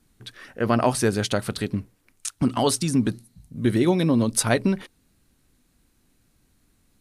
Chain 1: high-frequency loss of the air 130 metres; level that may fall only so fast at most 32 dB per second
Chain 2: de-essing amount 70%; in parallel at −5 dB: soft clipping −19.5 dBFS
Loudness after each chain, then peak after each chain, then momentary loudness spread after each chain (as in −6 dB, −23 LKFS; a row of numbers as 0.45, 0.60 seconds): −22.0, −21.0 LKFS; −6.5, −6.0 dBFS; 14, 16 LU